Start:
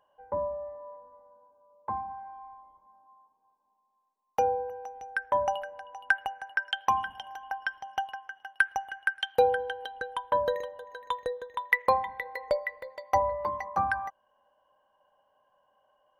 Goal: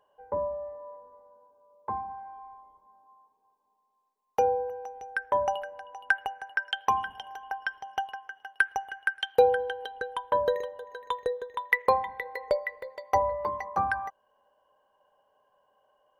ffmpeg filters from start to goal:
ffmpeg -i in.wav -af "equalizer=frequency=420:width_type=o:width=0.3:gain=9.5" out.wav

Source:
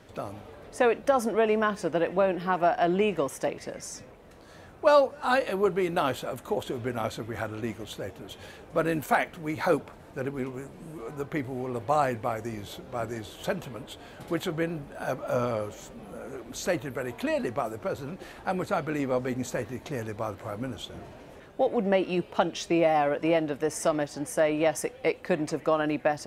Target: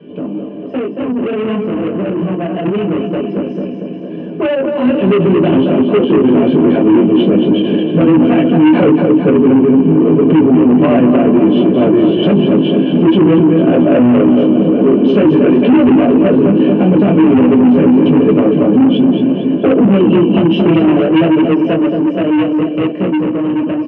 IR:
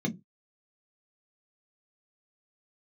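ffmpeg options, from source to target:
-filter_complex "[0:a]flanger=delay=19.5:depth=6.6:speed=1.1,acompressor=threshold=-36dB:ratio=2[link_01];[1:a]atrim=start_sample=2205,asetrate=61740,aresample=44100[link_02];[link_01][link_02]afir=irnorm=-1:irlink=0,flanger=delay=6.8:depth=9.8:regen=77:speed=0.1:shape=sinusoidal,aecho=1:1:247|494|741|988|1235|1482|1729|1976:0.447|0.264|0.155|0.0917|0.0541|0.0319|0.0188|0.0111,asoftclip=type=tanh:threshold=-26dB,highpass=frequency=120:width=0.5412,highpass=frequency=120:width=1.3066,dynaudnorm=framelen=730:gausssize=17:maxgain=12dB,lowpass=frequency=2800:width_type=q:width=9.9,atempo=1.1,aemphasis=mode=reproduction:type=riaa,alimiter=level_in=9dB:limit=-1dB:release=50:level=0:latency=1,volume=-1.5dB"

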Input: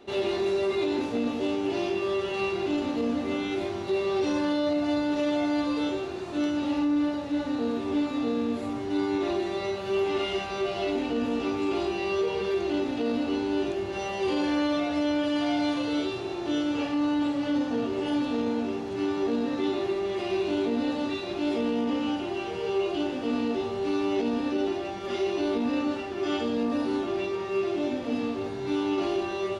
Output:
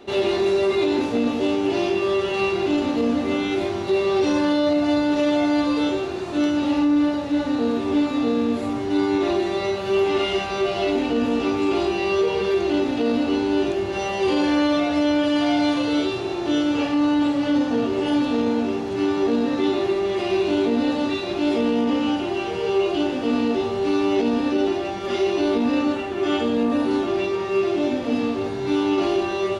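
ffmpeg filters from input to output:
ffmpeg -i in.wav -filter_complex "[0:a]asettb=1/sr,asplit=3[link_01][link_02][link_03];[link_01]atrim=end=25.924[link_04];[link_02]atrim=start=25.92:end=26.91,asetpts=PTS-STARTPTS,afade=type=in:duration=0.004:curve=qsin,afade=type=out:start_time=0.986:duration=0.004:curve=qsin,equalizer=frequency=5100:width=3.2:gain=-6.5[link_05];[link_03]atrim=start=26.906[link_06];[link_04][link_05]acrossfade=duration=0.004:curve1=hsin:curve2=qsin[link_07];[link_07][link_06]acrossfade=duration=0.004:curve1=qsin:curve2=hsin,volume=6.5dB" out.wav

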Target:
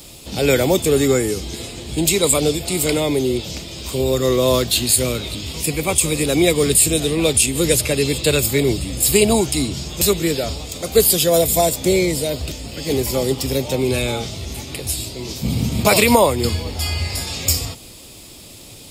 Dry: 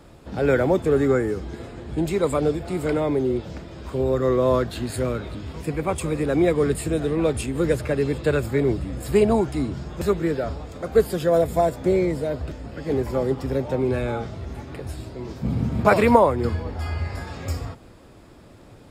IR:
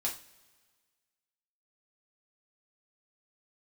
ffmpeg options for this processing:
-af "equalizer=frequency=4400:width=0.39:gain=-6,aexciter=amount=14.6:drive=2.6:freq=2400,alimiter=level_in=4.5dB:limit=-1dB:release=50:level=0:latency=1,volume=-1dB"

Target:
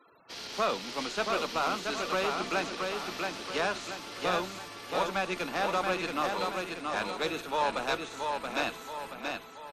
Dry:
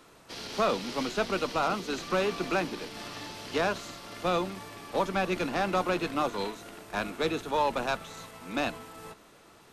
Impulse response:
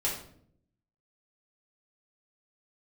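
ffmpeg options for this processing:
-af "lowshelf=frequency=470:gain=-8.5,aecho=1:1:678|1356|2034|2712|3390|4068:0.631|0.29|0.134|0.0614|0.0283|0.013,afftfilt=real='re*gte(hypot(re,im),0.002)':imag='im*gte(hypot(re,im),0.002)':win_size=1024:overlap=0.75"

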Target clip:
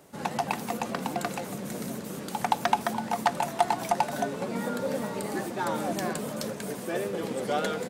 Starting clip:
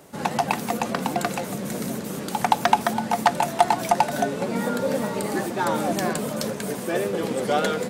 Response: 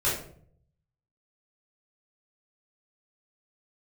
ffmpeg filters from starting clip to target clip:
-filter_complex "[0:a]asplit=6[link_01][link_02][link_03][link_04][link_05][link_06];[link_02]adelay=213,afreqshift=99,volume=-21.5dB[link_07];[link_03]adelay=426,afreqshift=198,volume=-25.8dB[link_08];[link_04]adelay=639,afreqshift=297,volume=-30.1dB[link_09];[link_05]adelay=852,afreqshift=396,volume=-34.4dB[link_10];[link_06]adelay=1065,afreqshift=495,volume=-38.7dB[link_11];[link_01][link_07][link_08][link_09][link_10][link_11]amix=inputs=6:normalize=0,volume=-6dB"

